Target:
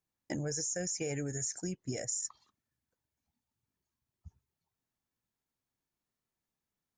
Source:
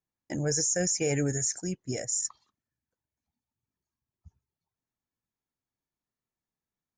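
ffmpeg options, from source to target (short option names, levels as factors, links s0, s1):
-af "acompressor=threshold=0.0178:ratio=6,volume=1.19"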